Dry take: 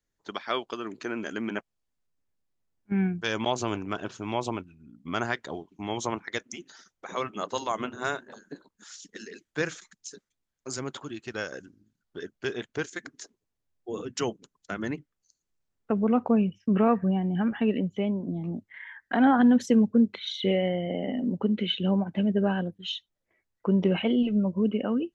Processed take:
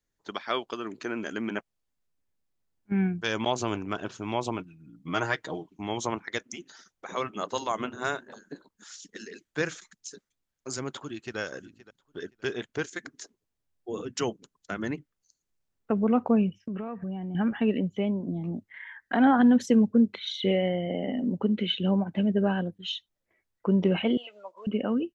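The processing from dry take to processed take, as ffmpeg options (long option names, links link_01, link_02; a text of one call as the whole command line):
ffmpeg -i in.wav -filter_complex "[0:a]asettb=1/sr,asplit=3[link_01][link_02][link_03];[link_01]atrim=end=4.584[link_04];[link_02]atrim=start=4.58:end=5.68,asetpts=PTS-STARTPTS,afade=type=in:duration=0.004:curve=qsin,afade=type=out:start_time=1.096:duration=0.004:curve=qsin,aecho=1:1:6.4:0.65,atrim=end_sample=48510[link_05];[link_03]atrim=start=5.676[link_06];[link_04][link_05]acrossfade=duration=0.004:curve1=hsin:curve2=qsin[link_07];[link_07][link_06]acrossfade=duration=0.004:curve1=qsin:curve2=hsin,asplit=2[link_08][link_09];[link_09]afade=type=in:start_time=10.9:duration=0.01,afade=type=out:start_time=11.38:duration=0.01,aecho=0:1:520|1040:0.141254|0.0282508[link_10];[link_08][link_10]amix=inputs=2:normalize=0,asettb=1/sr,asplit=3[link_11][link_12][link_13];[link_11]atrim=end=16.614[link_14];[link_12]atrim=start=16.61:end=17.35,asetpts=PTS-STARTPTS,afade=type=in:duration=0.004:curve=qsin,afade=type=out:start_time=0.736:duration=0.004:curve=qsin,acompressor=threshold=-32dB:ratio=5:attack=3.2:release=140:knee=1:detection=peak[link_15];[link_13]atrim=start=17.346[link_16];[link_14][link_15]acrossfade=duration=0.004:curve1=hsin:curve2=qsin[link_17];[link_17][link_16]acrossfade=duration=0.004:curve1=qsin:curve2=hsin,asettb=1/sr,asplit=3[link_18][link_19][link_20];[link_18]atrim=end=24.174[link_21];[link_19]atrim=start=24.17:end=24.67,asetpts=PTS-STARTPTS,afade=type=in:duration=0.004:curve=qsin,afade=type=out:start_time=0.496:duration=0.004:curve=qsin,highpass=frequency=700:width=0.5412,highpass=frequency=700:width=1.3066[link_22];[link_20]atrim=start=24.666[link_23];[link_21][link_22]acrossfade=duration=0.004:curve1=hsin:curve2=qsin[link_24];[link_24][link_23]acrossfade=duration=0.004:curve1=qsin:curve2=hsin" out.wav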